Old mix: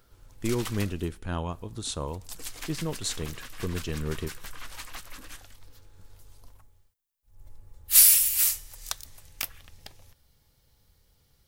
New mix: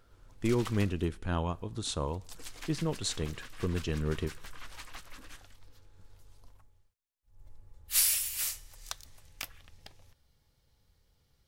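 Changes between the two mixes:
background −4.5 dB
master: add high-shelf EQ 9,800 Hz −10.5 dB

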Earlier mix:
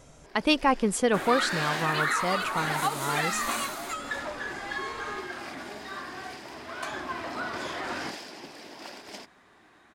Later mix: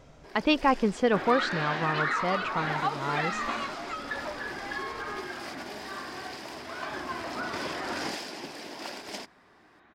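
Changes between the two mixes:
speech: add Gaussian smoothing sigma 1.7 samples
first sound +4.0 dB
second sound: add high-frequency loss of the air 200 metres

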